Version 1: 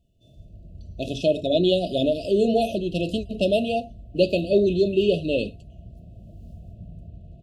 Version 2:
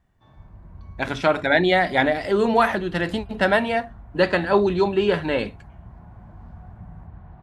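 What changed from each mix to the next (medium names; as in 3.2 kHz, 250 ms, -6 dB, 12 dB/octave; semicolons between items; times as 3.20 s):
background: add distance through air 160 m; master: remove brick-wall FIR band-stop 710–2500 Hz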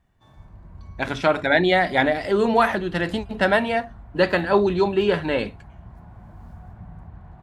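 background: remove distance through air 160 m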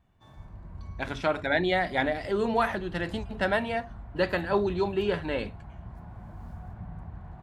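speech -7.5 dB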